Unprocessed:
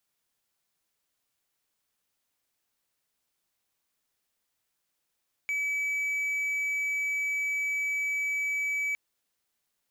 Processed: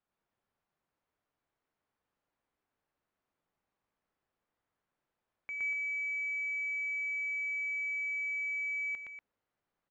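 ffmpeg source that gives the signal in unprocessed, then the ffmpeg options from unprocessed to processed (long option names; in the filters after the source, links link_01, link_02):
-f lavfi -i "aevalsrc='0.0562*(1-4*abs(mod(2290*t+0.25,1)-0.5))':duration=3.46:sample_rate=44100"
-filter_complex "[0:a]lowpass=1300,aemphasis=mode=production:type=cd,asplit=2[link_01][link_02];[link_02]aecho=0:1:116.6|239.1:0.891|0.398[link_03];[link_01][link_03]amix=inputs=2:normalize=0"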